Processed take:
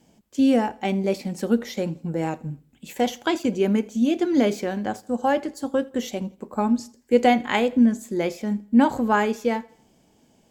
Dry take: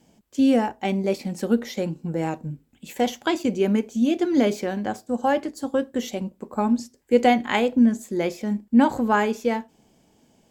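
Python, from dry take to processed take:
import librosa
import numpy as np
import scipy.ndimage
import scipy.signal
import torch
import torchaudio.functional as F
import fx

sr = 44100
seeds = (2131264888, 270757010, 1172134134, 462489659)

y = fx.echo_feedback(x, sr, ms=83, feedback_pct=44, wet_db=-23.5)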